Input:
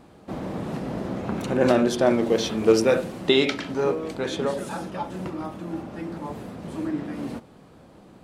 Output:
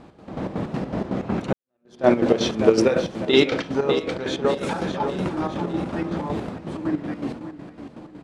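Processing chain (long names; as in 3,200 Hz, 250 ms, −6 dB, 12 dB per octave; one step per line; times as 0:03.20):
high-frequency loss of the air 69 metres
repeating echo 600 ms, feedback 49%, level −11 dB
square-wave tremolo 5.4 Hz, depth 60%, duty 55%
0:01.53–0:02.07: fade in exponential
0:04.61–0:06.49: envelope flattener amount 50%
level +4.5 dB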